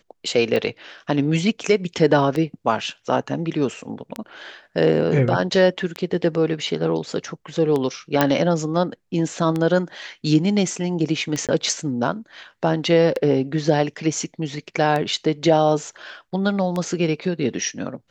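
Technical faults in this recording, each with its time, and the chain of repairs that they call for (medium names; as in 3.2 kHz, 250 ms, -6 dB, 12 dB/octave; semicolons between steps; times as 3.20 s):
tick 33 1/3 rpm -12 dBFS
8.21 s: pop -3 dBFS
11.47–11.49 s: dropout 17 ms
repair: de-click; interpolate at 11.47 s, 17 ms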